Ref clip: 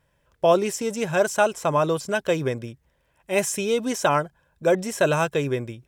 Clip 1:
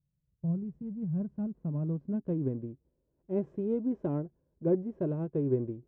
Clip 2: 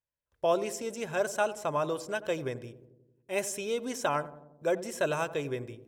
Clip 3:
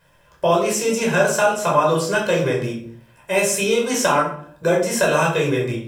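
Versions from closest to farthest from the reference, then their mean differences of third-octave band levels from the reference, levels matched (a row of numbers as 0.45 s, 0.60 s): 2, 3, 1; 2.5 dB, 7.0 dB, 14.0 dB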